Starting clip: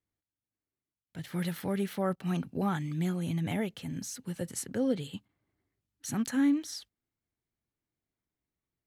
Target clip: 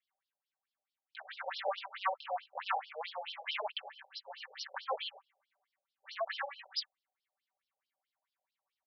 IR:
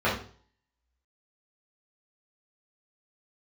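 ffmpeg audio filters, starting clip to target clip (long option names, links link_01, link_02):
-af "flanger=delay=18.5:depth=2.3:speed=1.6,aecho=1:1:5.2:0.86,asoftclip=type=hard:threshold=-31.5dB,lowshelf=frequency=460:width_type=q:width=1.5:gain=-13.5,afftfilt=real='re*between(b*sr/1024,580*pow(4100/580,0.5+0.5*sin(2*PI*4.6*pts/sr))/1.41,580*pow(4100/580,0.5+0.5*sin(2*PI*4.6*pts/sr))*1.41)':imag='im*between(b*sr/1024,580*pow(4100/580,0.5+0.5*sin(2*PI*4.6*pts/sr))/1.41,580*pow(4100/580,0.5+0.5*sin(2*PI*4.6*pts/sr))*1.41)':win_size=1024:overlap=0.75,volume=10.5dB"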